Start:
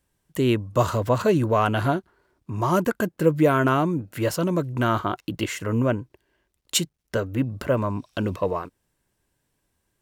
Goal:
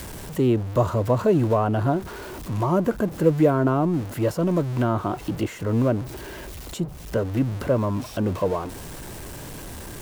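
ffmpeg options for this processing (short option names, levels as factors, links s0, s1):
-filter_complex "[0:a]aeval=exprs='val(0)+0.5*0.0376*sgn(val(0))':c=same,acrossover=split=440|1000[s0][s1][s2];[s2]acompressor=threshold=0.0112:ratio=6[s3];[s0][s1][s3]amix=inputs=3:normalize=0"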